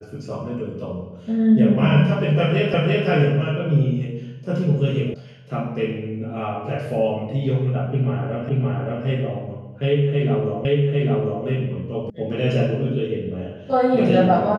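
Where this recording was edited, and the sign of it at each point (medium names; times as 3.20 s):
2.74 s: repeat of the last 0.34 s
5.14 s: sound stops dead
8.49 s: repeat of the last 0.57 s
10.65 s: repeat of the last 0.8 s
12.10 s: sound stops dead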